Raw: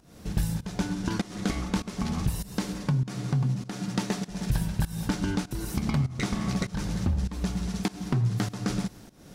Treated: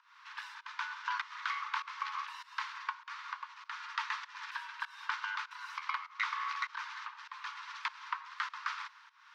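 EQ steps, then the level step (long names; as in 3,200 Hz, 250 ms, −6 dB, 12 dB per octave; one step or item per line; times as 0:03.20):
Butterworth high-pass 960 Hz 96 dB per octave
high-frequency loss of the air 240 metres
spectral tilt −3 dB per octave
+7.5 dB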